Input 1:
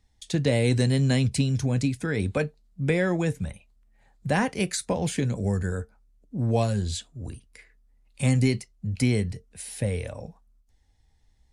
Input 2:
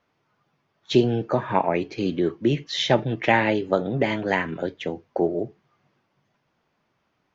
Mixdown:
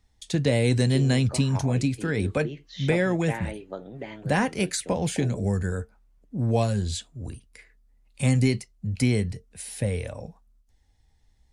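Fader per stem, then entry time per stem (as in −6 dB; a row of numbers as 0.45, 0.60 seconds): +0.5, −15.0 decibels; 0.00, 0.00 seconds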